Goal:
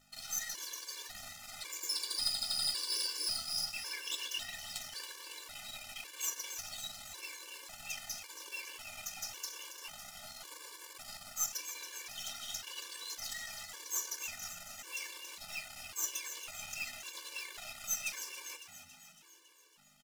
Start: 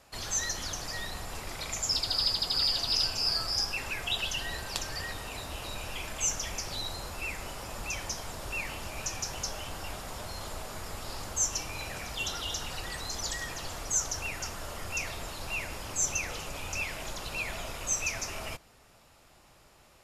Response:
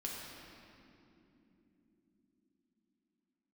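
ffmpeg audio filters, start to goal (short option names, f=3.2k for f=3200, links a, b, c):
-filter_complex "[0:a]aeval=exprs='max(val(0),0)':c=same,tiltshelf=f=1.1k:g=-6,acrusher=bits=3:mode=log:mix=0:aa=0.000001,flanger=delay=7.4:depth=8.4:regen=-63:speed=0.16:shape=sinusoidal,aeval=exprs='val(0)+0.000891*(sin(2*PI*50*n/s)+sin(2*PI*2*50*n/s)/2+sin(2*PI*3*50*n/s)/3+sin(2*PI*4*50*n/s)/4+sin(2*PI*5*50*n/s)/5)':c=same,lowshelf=f=200:g=-9,bandreject=f=50:t=h:w=6,bandreject=f=100:t=h:w=6,asplit=8[a][b][c][d][e][f][g][h];[b]adelay=277,afreqshift=84,volume=-10dB[i];[c]adelay=554,afreqshift=168,volume=-14.3dB[j];[d]adelay=831,afreqshift=252,volume=-18.6dB[k];[e]adelay=1108,afreqshift=336,volume=-22.9dB[l];[f]adelay=1385,afreqshift=420,volume=-27.2dB[m];[g]adelay=1662,afreqshift=504,volume=-31.5dB[n];[h]adelay=1939,afreqshift=588,volume=-35.8dB[o];[a][i][j][k][l][m][n][o]amix=inputs=8:normalize=0,afftfilt=real='re*gt(sin(2*PI*0.91*pts/sr)*(1-2*mod(floor(b*sr/1024/300),2)),0)':imag='im*gt(sin(2*PI*0.91*pts/sr)*(1-2*mod(floor(b*sr/1024/300),2)),0)':win_size=1024:overlap=0.75"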